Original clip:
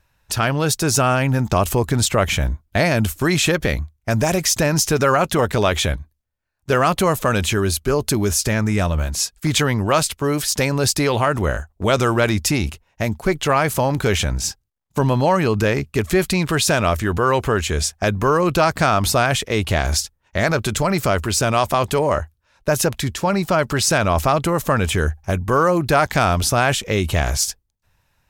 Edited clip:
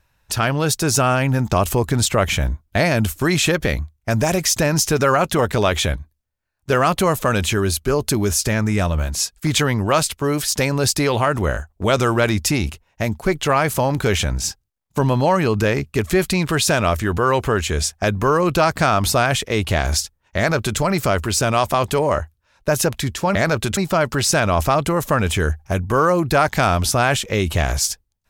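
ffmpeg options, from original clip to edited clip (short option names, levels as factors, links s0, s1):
-filter_complex "[0:a]asplit=3[s0][s1][s2];[s0]atrim=end=23.352[s3];[s1]atrim=start=20.368:end=20.792[s4];[s2]atrim=start=23.348[s5];[s3][s4]acrossfade=d=0.004:c1=hsin:c2=hsin[s6];[s6][s5]acrossfade=d=0.004:c1=hsin:c2=hsin"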